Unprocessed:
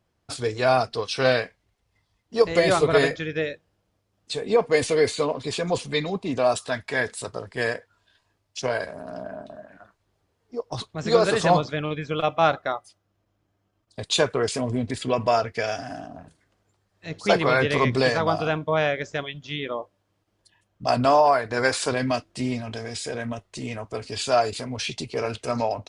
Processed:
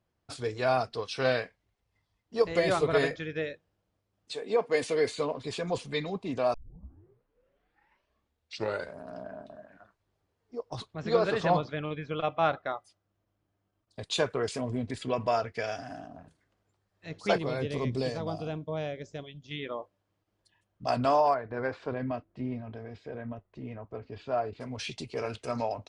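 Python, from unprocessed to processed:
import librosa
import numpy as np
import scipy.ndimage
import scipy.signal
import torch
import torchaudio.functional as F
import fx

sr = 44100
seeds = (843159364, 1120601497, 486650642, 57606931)

y = fx.highpass(x, sr, hz=fx.line((4.32, 320.0), (5.1, 130.0)), slope=12, at=(4.32, 5.1), fade=0.02)
y = fx.lowpass(y, sr, hz=4500.0, slope=12, at=(10.95, 12.73))
y = fx.peak_eq(y, sr, hz=1500.0, db=-14.0, octaves=2.0, at=(17.38, 19.51))
y = fx.spacing_loss(y, sr, db_at_10k=43, at=(21.33, 24.6), fade=0.02)
y = fx.edit(y, sr, fx.tape_start(start_s=6.54, length_s=2.45), tone=tone)
y = fx.high_shelf(y, sr, hz=5800.0, db=-6.0)
y = y * librosa.db_to_amplitude(-6.5)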